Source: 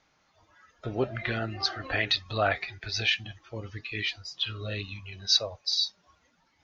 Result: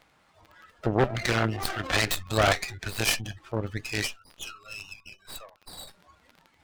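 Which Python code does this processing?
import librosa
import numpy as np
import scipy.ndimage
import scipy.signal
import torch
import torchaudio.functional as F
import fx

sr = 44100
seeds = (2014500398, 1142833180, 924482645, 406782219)

y = fx.spec_gate(x, sr, threshold_db=-30, keep='strong')
y = fx.double_bandpass(y, sr, hz=1900.0, octaves=0.99, at=(4.06, 5.87), fade=0.02)
y = fx.cheby_harmonics(y, sr, harmonics=(5, 8), levels_db=(-15, -9), full_scale_db=-11.5)
y = fx.dmg_crackle(y, sr, seeds[0], per_s=20.0, level_db=-42.0)
y = fx.running_max(y, sr, window=5)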